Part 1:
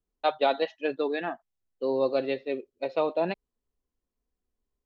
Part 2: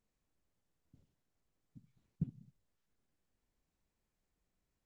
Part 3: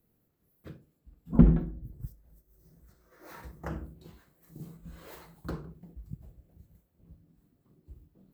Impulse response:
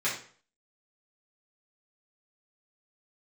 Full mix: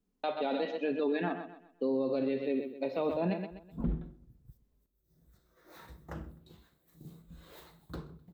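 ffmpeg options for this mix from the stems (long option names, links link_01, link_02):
-filter_complex "[0:a]equalizer=frequency=210:width_type=o:width=1.4:gain=13,acompressor=threshold=-35dB:ratio=1.5,volume=0dB,asplit=3[link_01][link_02][link_03];[link_02]volume=-16.5dB[link_04];[link_03]volume=-10dB[link_05];[2:a]equalizer=frequency=3700:width_type=o:width=0.29:gain=10.5,adelay=2450,volume=5dB,afade=type=out:start_time=3.75:duration=0.22:silence=0.298538,afade=type=in:start_time=5.04:duration=0.24:silence=0.316228,asplit=2[link_06][link_07];[link_07]volume=-22dB[link_08];[3:a]atrim=start_sample=2205[link_09];[link_04][link_09]afir=irnorm=-1:irlink=0[link_10];[link_05][link_08]amix=inputs=2:normalize=0,aecho=0:1:128|256|384|512|640:1|0.34|0.116|0.0393|0.0134[link_11];[link_01][link_06][link_10][link_11]amix=inputs=4:normalize=0,alimiter=limit=-23dB:level=0:latency=1:release=29"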